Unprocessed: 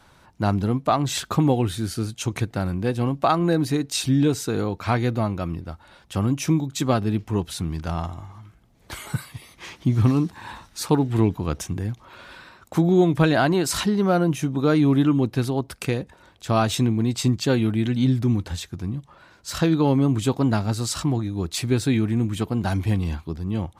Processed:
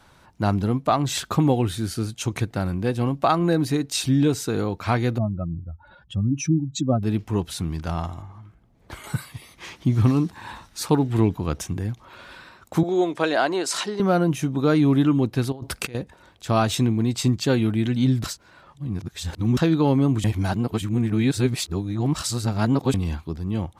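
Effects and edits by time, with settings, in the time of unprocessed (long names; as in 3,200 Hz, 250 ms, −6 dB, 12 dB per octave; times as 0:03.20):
0:05.18–0:07.03: expanding power law on the bin magnitudes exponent 2.3
0:08.22–0:09.04: high-shelf EQ 2,400 Hz −10.5 dB
0:12.83–0:14.00: Chebyshev band-pass filter 430–8,300 Hz
0:15.52–0:15.95: compressor whose output falls as the input rises −34 dBFS
0:18.24–0:19.57: reverse
0:20.24–0:22.94: reverse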